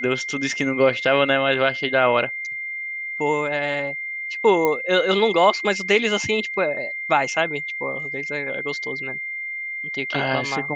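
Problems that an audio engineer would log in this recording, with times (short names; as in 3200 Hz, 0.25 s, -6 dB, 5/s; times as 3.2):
tone 2100 Hz -27 dBFS
4.65 pop -8 dBFS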